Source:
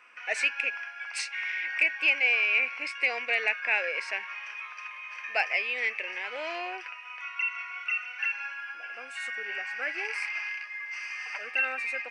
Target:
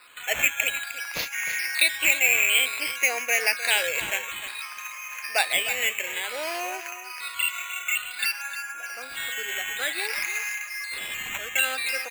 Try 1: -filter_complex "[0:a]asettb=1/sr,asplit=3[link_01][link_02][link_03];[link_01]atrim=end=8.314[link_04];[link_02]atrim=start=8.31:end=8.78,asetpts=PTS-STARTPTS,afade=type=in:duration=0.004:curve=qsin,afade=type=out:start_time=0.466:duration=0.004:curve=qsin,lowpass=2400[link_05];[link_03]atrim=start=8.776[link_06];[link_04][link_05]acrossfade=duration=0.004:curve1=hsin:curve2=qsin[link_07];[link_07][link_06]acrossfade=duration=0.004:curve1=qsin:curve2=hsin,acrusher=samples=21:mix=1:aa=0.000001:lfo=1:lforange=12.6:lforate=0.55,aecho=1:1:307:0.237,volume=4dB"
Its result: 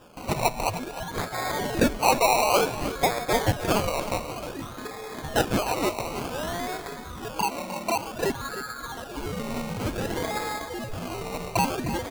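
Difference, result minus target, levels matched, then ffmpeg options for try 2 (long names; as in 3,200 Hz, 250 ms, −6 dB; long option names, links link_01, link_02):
sample-and-hold swept by an LFO: distortion +19 dB
-filter_complex "[0:a]asettb=1/sr,asplit=3[link_01][link_02][link_03];[link_01]atrim=end=8.314[link_04];[link_02]atrim=start=8.31:end=8.78,asetpts=PTS-STARTPTS,afade=type=in:duration=0.004:curve=qsin,afade=type=out:start_time=0.466:duration=0.004:curve=qsin,lowpass=2400[link_05];[link_03]atrim=start=8.776[link_06];[link_04][link_05]acrossfade=duration=0.004:curve1=hsin:curve2=qsin[link_07];[link_07][link_06]acrossfade=duration=0.004:curve1=qsin:curve2=hsin,acrusher=samples=7:mix=1:aa=0.000001:lfo=1:lforange=4.2:lforate=0.55,aecho=1:1:307:0.237,volume=4dB"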